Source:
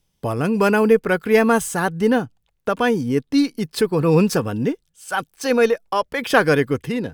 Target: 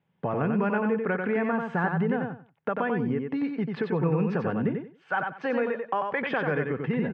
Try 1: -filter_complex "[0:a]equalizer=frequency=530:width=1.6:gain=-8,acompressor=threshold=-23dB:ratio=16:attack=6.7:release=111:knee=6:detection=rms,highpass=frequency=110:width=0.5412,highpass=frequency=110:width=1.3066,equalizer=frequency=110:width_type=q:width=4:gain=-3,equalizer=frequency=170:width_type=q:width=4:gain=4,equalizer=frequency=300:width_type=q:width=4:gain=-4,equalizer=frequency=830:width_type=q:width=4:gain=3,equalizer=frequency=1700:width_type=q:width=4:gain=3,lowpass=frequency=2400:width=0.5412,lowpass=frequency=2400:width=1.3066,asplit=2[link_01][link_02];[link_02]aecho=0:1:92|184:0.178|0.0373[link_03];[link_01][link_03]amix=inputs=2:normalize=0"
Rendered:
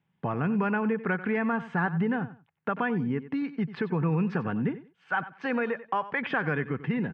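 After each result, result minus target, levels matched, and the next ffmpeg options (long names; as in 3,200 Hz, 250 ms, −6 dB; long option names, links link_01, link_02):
echo-to-direct −10.5 dB; 500 Hz band −3.0 dB
-filter_complex "[0:a]equalizer=frequency=530:width=1.6:gain=-8,acompressor=threshold=-23dB:ratio=16:attack=6.7:release=111:knee=6:detection=rms,highpass=frequency=110:width=0.5412,highpass=frequency=110:width=1.3066,equalizer=frequency=110:width_type=q:width=4:gain=-3,equalizer=frequency=170:width_type=q:width=4:gain=4,equalizer=frequency=300:width_type=q:width=4:gain=-4,equalizer=frequency=830:width_type=q:width=4:gain=3,equalizer=frequency=1700:width_type=q:width=4:gain=3,lowpass=frequency=2400:width=0.5412,lowpass=frequency=2400:width=1.3066,asplit=2[link_01][link_02];[link_02]aecho=0:1:92|184|276:0.596|0.125|0.0263[link_03];[link_01][link_03]amix=inputs=2:normalize=0"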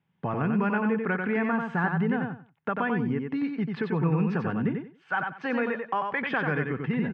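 500 Hz band −3.5 dB
-filter_complex "[0:a]acompressor=threshold=-23dB:ratio=16:attack=6.7:release=111:knee=6:detection=rms,highpass=frequency=110:width=0.5412,highpass=frequency=110:width=1.3066,equalizer=frequency=110:width_type=q:width=4:gain=-3,equalizer=frequency=170:width_type=q:width=4:gain=4,equalizer=frequency=300:width_type=q:width=4:gain=-4,equalizer=frequency=830:width_type=q:width=4:gain=3,equalizer=frequency=1700:width_type=q:width=4:gain=3,lowpass=frequency=2400:width=0.5412,lowpass=frequency=2400:width=1.3066,asplit=2[link_01][link_02];[link_02]aecho=0:1:92|184|276:0.596|0.125|0.0263[link_03];[link_01][link_03]amix=inputs=2:normalize=0"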